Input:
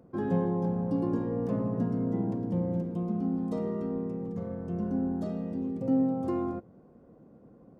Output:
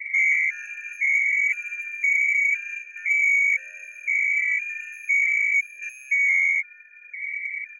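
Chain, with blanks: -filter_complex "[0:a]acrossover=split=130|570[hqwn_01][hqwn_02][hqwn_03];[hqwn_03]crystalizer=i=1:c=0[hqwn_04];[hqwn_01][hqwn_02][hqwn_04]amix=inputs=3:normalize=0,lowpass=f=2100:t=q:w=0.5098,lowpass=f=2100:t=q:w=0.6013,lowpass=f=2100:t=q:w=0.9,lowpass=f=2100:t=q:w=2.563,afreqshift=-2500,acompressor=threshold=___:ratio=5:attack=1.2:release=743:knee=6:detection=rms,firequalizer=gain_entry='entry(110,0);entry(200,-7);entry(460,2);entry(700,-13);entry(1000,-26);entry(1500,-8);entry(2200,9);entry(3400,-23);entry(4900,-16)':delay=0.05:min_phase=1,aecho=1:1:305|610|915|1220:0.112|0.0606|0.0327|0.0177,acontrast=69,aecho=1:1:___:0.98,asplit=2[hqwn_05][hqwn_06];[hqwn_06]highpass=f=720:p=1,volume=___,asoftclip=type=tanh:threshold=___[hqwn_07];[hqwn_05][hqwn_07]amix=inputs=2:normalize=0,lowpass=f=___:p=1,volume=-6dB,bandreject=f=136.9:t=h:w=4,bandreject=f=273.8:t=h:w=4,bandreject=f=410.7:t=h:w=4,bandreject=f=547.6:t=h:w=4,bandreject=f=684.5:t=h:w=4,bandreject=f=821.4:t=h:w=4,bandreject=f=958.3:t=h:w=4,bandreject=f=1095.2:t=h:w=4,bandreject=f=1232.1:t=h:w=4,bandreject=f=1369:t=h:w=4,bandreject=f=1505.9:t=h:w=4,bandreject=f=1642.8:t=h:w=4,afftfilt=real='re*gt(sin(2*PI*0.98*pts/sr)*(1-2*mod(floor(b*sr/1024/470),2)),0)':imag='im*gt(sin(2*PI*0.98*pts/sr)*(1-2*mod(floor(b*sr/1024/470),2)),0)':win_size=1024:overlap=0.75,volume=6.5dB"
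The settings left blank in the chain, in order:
-37dB, 6.2, 13dB, -13.5dB, 1200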